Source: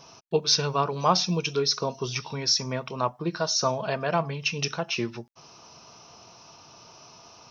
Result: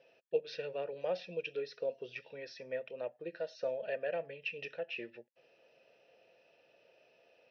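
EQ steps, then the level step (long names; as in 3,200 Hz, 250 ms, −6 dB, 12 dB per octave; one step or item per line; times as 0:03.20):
formant filter e
high-frequency loss of the air 320 metres
high-shelf EQ 2,600 Hz +10 dB
0.0 dB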